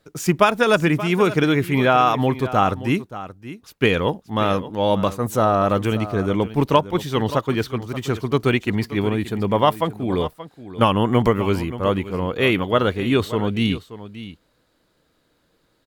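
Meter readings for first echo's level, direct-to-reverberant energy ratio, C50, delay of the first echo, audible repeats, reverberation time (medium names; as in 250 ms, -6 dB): -14.5 dB, no reverb, no reverb, 578 ms, 1, no reverb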